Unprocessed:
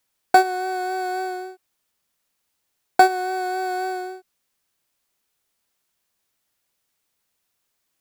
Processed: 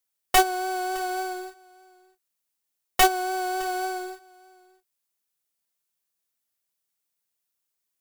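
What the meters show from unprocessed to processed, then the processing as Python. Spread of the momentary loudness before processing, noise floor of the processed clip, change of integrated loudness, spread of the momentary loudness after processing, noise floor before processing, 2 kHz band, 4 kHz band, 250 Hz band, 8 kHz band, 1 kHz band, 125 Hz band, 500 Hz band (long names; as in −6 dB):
14 LU, −81 dBFS, −3.0 dB, 14 LU, −75 dBFS, −3.0 dB, +5.0 dB, −4.0 dB, +6.5 dB, −4.5 dB, can't be measured, −4.0 dB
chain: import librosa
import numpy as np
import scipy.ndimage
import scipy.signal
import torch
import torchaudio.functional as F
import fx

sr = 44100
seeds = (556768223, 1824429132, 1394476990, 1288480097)

p1 = fx.tracing_dist(x, sr, depth_ms=0.16)
p2 = scipy.signal.sosfilt(scipy.signal.butter(4, 74.0, 'highpass', fs=sr, output='sos'), p1)
p3 = fx.high_shelf(p2, sr, hz=5900.0, db=9.0)
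p4 = fx.quant_companded(p3, sr, bits=2)
p5 = p3 + (p4 * 10.0 ** (-11.5 / 20.0))
p6 = 10.0 ** (-7.5 / 20.0) * (np.abs((p5 / 10.0 ** (-7.5 / 20.0) + 3.0) % 4.0 - 2.0) - 1.0)
p7 = p6 + fx.echo_single(p6, sr, ms=612, db=-17.0, dry=0)
y = fx.upward_expand(p7, sr, threshold_db=-40.0, expansion=1.5)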